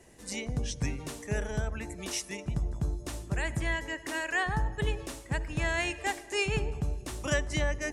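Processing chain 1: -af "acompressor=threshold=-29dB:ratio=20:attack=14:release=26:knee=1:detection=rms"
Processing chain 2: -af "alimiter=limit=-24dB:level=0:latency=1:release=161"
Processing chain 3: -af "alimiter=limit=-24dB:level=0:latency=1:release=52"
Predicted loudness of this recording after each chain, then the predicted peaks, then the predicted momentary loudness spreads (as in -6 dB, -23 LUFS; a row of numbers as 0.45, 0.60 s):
-34.0, -35.5, -35.0 LUFS; -19.5, -24.0, -24.0 dBFS; 6, 5, 5 LU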